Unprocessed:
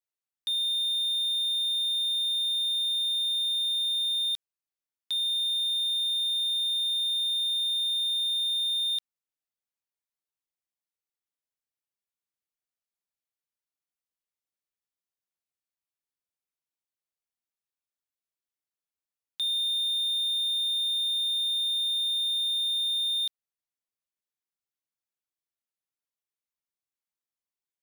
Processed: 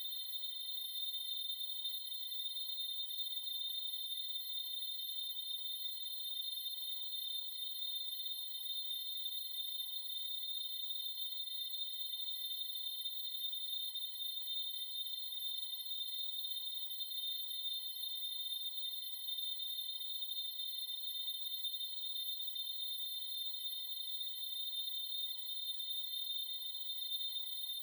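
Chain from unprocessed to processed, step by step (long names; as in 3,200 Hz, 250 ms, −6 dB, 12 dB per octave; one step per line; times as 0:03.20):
running median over 15 samples
comb and all-pass reverb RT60 0.56 s, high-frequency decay 0.45×, pre-delay 110 ms, DRR −6.5 dB
extreme stretch with random phases 22×, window 0.05 s, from 0:00.69
level −6.5 dB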